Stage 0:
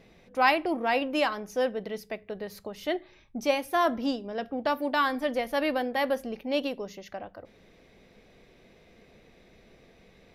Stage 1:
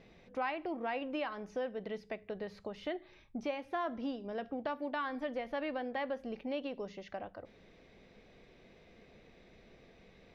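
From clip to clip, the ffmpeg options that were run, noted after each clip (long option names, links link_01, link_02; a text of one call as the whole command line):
ffmpeg -i in.wav -filter_complex "[0:a]acrossover=split=3700[link_01][link_02];[link_02]acompressor=threshold=-58dB:ratio=4:attack=1:release=60[link_03];[link_01][link_03]amix=inputs=2:normalize=0,lowpass=5700,acompressor=threshold=-33dB:ratio=3,volume=-3dB" out.wav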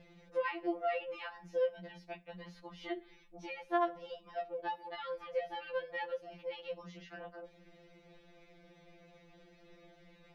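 ffmpeg -i in.wav -af "afftfilt=real='re*2.83*eq(mod(b,8),0)':imag='im*2.83*eq(mod(b,8),0)':win_size=2048:overlap=0.75,volume=1.5dB" out.wav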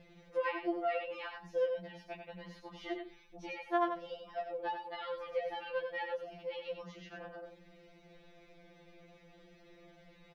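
ffmpeg -i in.wav -af "aecho=1:1:93:0.473" out.wav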